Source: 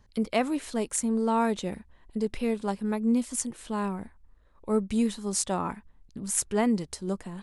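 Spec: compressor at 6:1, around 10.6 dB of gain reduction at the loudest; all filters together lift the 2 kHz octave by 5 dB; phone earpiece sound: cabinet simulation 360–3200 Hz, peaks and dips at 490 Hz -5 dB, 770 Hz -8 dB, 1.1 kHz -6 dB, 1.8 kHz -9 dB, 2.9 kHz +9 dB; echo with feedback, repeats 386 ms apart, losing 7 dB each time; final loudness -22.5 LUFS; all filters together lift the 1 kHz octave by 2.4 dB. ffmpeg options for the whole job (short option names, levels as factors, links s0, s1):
-af "equalizer=f=1000:t=o:g=8.5,equalizer=f=2000:t=o:g=7,acompressor=threshold=0.0447:ratio=6,highpass=360,equalizer=f=490:t=q:w=4:g=-5,equalizer=f=770:t=q:w=4:g=-8,equalizer=f=1100:t=q:w=4:g=-6,equalizer=f=1800:t=q:w=4:g=-9,equalizer=f=2900:t=q:w=4:g=9,lowpass=f=3200:w=0.5412,lowpass=f=3200:w=1.3066,aecho=1:1:386|772|1158|1544|1930:0.447|0.201|0.0905|0.0407|0.0183,volume=6.31"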